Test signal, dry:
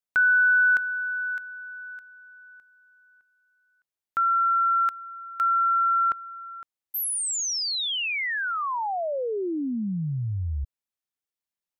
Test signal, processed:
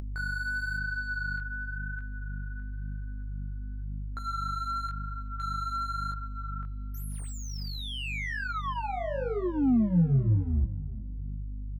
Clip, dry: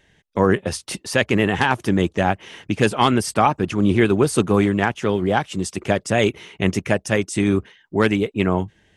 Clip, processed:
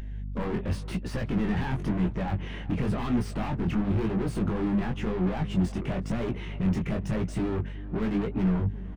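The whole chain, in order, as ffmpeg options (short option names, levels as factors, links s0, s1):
-filter_complex "[0:a]aeval=exprs='(mod(1.58*val(0)+1,2)-1)/1.58':c=same,alimiter=limit=0.251:level=0:latency=1:release=47,volume=37.6,asoftclip=hard,volume=0.0266,equalizer=f=210:w=1:g=6,aeval=exprs='val(0)+0.00708*(sin(2*PI*50*n/s)+sin(2*PI*2*50*n/s)/2+sin(2*PI*3*50*n/s)/3+sin(2*PI*4*50*n/s)/4+sin(2*PI*5*50*n/s)/5)':c=same,asplit=2[s0][s1];[s1]adelay=373,lowpass=f=2100:p=1,volume=0.126,asplit=2[s2][s3];[s3]adelay=373,lowpass=f=2100:p=1,volume=0.38,asplit=2[s4][s5];[s5]adelay=373,lowpass=f=2100:p=1,volume=0.38[s6];[s0][s2][s4][s6]amix=inputs=4:normalize=0,flanger=delay=16.5:depth=7.1:speed=0.95,bass=f=250:g=8,treble=f=4000:g=-15,acompressor=mode=upward:threshold=0.0251:ratio=2.5:attack=2.4:release=778:knee=2.83:detection=peak,volume=1.19"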